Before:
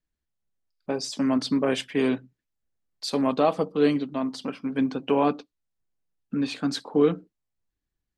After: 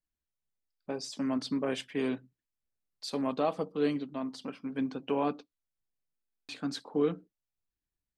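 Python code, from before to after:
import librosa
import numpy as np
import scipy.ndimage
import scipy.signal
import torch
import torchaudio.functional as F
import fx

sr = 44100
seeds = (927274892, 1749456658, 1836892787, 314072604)

y = fx.buffer_glitch(x, sr, at_s=(6.14,), block=1024, repeats=14)
y = F.gain(torch.from_numpy(y), -8.0).numpy()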